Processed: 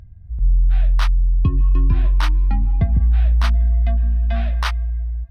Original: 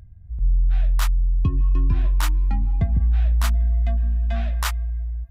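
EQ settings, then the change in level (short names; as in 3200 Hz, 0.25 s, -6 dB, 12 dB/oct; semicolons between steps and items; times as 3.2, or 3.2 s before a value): polynomial smoothing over 15 samples; +3.5 dB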